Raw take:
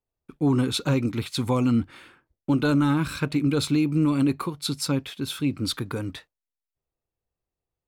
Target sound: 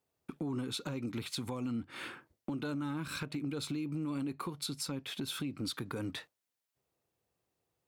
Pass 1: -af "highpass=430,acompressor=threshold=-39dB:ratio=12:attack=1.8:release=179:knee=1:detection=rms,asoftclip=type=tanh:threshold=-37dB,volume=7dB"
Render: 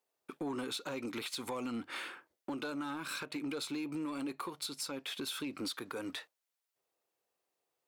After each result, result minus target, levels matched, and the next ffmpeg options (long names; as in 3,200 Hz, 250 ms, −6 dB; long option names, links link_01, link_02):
125 Hz band −11.5 dB; soft clipping: distortion +14 dB
-af "highpass=120,acompressor=threshold=-39dB:ratio=12:attack=1.8:release=179:knee=1:detection=rms,asoftclip=type=tanh:threshold=-37dB,volume=7dB"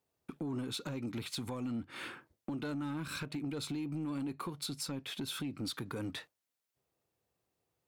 soft clipping: distortion +15 dB
-af "highpass=120,acompressor=threshold=-39dB:ratio=12:attack=1.8:release=179:knee=1:detection=rms,asoftclip=type=tanh:threshold=-28.5dB,volume=7dB"